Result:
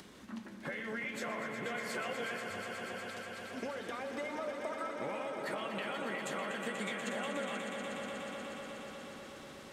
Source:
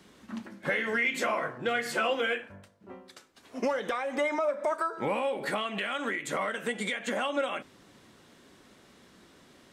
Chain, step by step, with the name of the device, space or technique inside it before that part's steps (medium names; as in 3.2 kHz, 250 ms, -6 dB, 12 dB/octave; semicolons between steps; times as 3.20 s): upward and downward compression (upward compressor, threshold -42 dBFS; compression, threshold -33 dBFS, peak gain reduction 9 dB); echo with a slow build-up 121 ms, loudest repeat 5, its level -9 dB; trim -5 dB